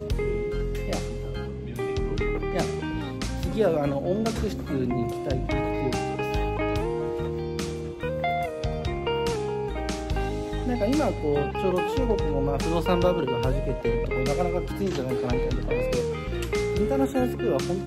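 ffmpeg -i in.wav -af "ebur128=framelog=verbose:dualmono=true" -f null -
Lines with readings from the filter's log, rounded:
Integrated loudness:
  I:         -24.1 LUFS
  Threshold: -34.1 LUFS
Loudness range:
  LRA:         3.8 LU
  Threshold: -44.1 LUFS
  LRA low:   -26.0 LUFS
  LRA high:  -22.2 LUFS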